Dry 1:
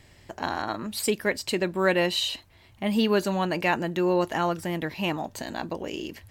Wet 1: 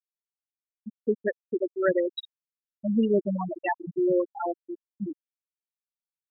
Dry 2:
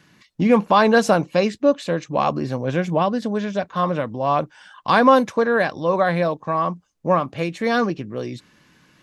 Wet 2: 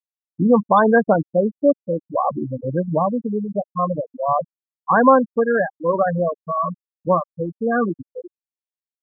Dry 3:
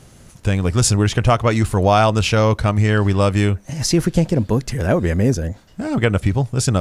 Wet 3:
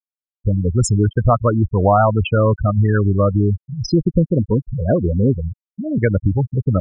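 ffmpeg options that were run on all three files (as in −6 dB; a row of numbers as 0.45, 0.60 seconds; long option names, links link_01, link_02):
-af "afftfilt=real='re*gte(hypot(re,im),0.355)':imag='im*gte(hypot(re,im),0.355)':win_size=1024:overlap=0.75,volume=1dB"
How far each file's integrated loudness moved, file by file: −1.5, +0.5, 0.0 LU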